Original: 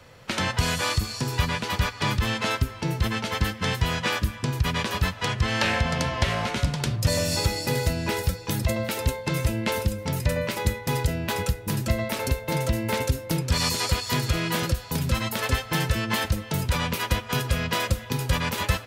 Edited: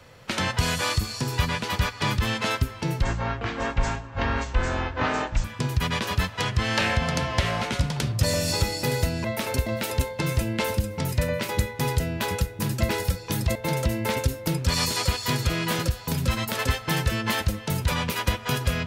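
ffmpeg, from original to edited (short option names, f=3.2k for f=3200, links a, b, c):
-filter_complex "[0:a]asplit=7[a][b][c][d][e][f][g];[a]atrim=end=3.024[h];[b]atrim=start=3.02:end=4.28,asetpts=PTS-STARTPTS,asetrate=22932,aresample=44100[i];[c]atrim=start=4.276:end=8.082[j];[d]atrim=start=11.968:end=12.392[k];[e]atrim=start=8.738:end=11.972[l];[f]atrim=start=8.078:end=8.742[m];[g]atrim=start=12.388[n];[h][i]acrossfade=d=0.004:c1=hsin:c2=hsin[o];[o][j]acrossfade=d=0.004:c1=hsin:c2=hsin[p];[p][k]acrossfade=d=0.004:c1=hsin:c2=hsin[q];[q][l]acrossfade=d=0.004:c1=hsin:c2=hsin[r];[r][m]acrossfade=d=0.004:c1=hsin:c2=hsin[s];[s][n]acrossfade=d=0.004:c1=hsin:c2=hsin"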